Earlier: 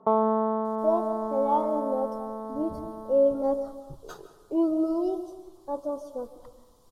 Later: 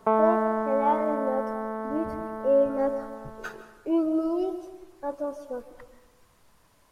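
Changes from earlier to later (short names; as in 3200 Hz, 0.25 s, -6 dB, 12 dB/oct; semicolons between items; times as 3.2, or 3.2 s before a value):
speech: entry -0.65 s; master: add band shelf 2000 Hz +16 dB 1.1 oct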